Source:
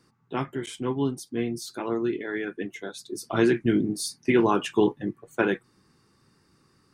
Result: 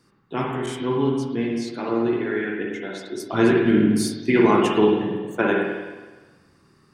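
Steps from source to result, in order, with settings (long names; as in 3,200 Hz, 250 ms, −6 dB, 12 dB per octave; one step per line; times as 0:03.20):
0:00.88–0:03.20: low-pass filter 5,900 Hz 12 dB per octave
spring reverb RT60 1.3 s, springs 47/52 ms, chirp 65 ms, DRR −1.5 dB
level +1.5 dB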